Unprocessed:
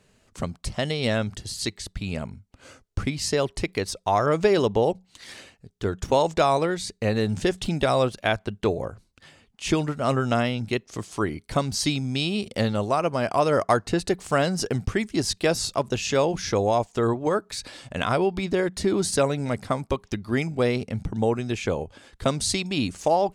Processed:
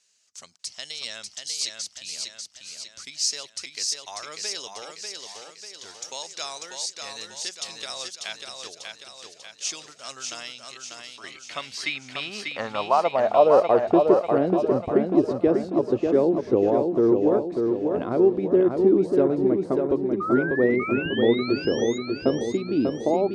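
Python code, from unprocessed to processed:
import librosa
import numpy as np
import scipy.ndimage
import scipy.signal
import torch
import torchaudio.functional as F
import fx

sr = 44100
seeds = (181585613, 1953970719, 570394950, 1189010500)

p1 = fx.level_steps(x, sr, step_db=16, at=(10.65, 11.24))
p2 = fx.spec_paint(p1, sr, seeds[0], shape='rise', start_s=20.2, length_s=1.78, low_hz=1200.0, high_hz=6900.0, level_db=-17.0)
p3 = fx.filter_sweep_bandpass(p2, sr, from_hz=5900.0, to_hz=340.0, start_s=10.6, end_s=14.09, q=2.5)
p4 = p3 + fx.echo_feedback(p3, sr, ms=593, feedback_pct=52, wet_db=-4.5, dry=0)
y = F.gain(torch.from_numpy(p4), 7.5).numpy()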